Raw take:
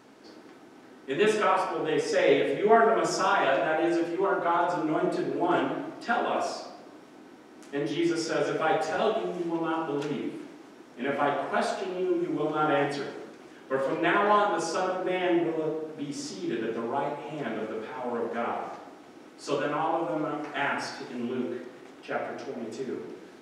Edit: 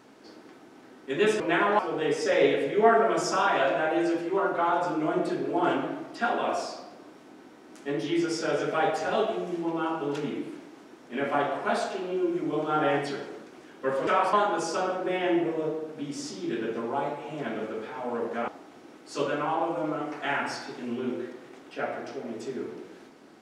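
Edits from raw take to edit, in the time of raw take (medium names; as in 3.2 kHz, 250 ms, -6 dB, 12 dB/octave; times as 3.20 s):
1.40–1.66 s: swap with 13.94–14.33 s
18.48–18.80 s: delete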